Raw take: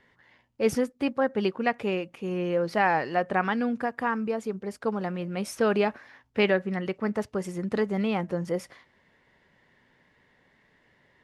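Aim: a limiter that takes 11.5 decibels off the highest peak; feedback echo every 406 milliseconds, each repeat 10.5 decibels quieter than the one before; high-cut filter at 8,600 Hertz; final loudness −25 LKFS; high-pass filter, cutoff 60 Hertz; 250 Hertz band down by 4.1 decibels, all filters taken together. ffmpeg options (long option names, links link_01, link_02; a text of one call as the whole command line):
ffmpeg -i in.wav -af "highpass=60,lowpass=8600,equalizer=frequency=250:width_type=o:gain=-5.5,alimiter=limit=-21.5dB:level=0:latency=1,aecho=1:1:406|812|1218:0.299|0.0896|0.0269,volume=8dB" out.wav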